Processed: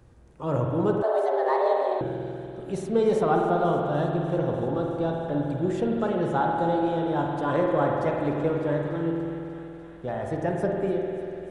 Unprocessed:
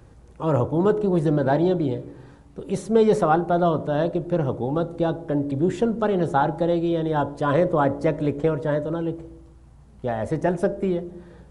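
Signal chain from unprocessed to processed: thin delay 0.296 s, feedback 81%, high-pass 1500 Hz, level -15 dB; spring tank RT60 3 s, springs 48 ms, chirp 30 ms, DRR 0 dB; 1.02–2.01 frequency shift +250 Hz; gain -6 dB

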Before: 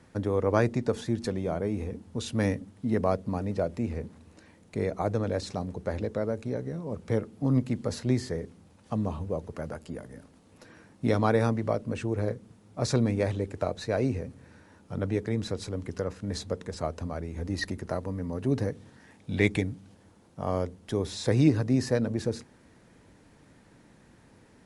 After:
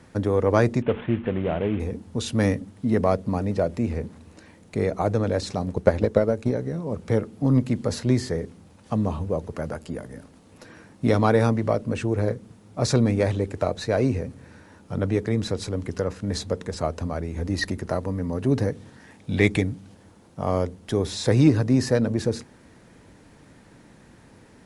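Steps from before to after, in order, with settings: 0.82–1.8 CVSD 16 kbps; in parallel at -8 dB: soft clip -21.5 dBFS, distortion -12 dB; 5.66–6.51 on the sum: transient shaper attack +10 dB, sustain -2 dB; gain +3 dB

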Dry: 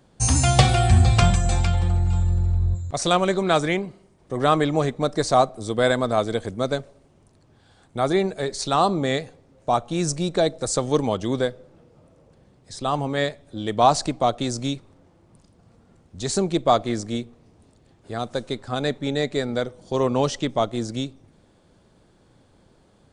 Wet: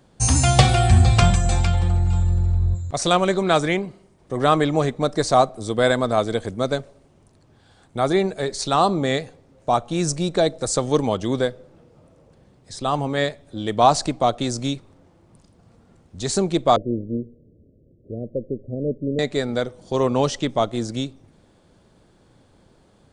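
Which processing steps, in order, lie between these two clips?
16.76–19.19 steep low-pass 580 Hz 72 dB/oct; gain +1.5 dB

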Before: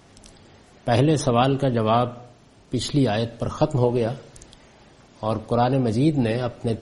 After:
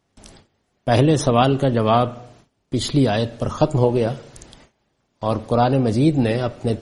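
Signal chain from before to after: gate with hold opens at -38 dBFS; gain +3 dB

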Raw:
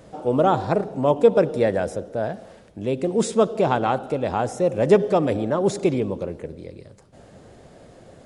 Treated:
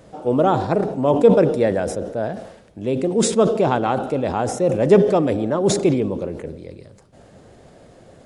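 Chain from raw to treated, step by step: dynamic EQ 290 Hz, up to +3 dB, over -32 dBFS, Q 1; sustainer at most 74 dB/s

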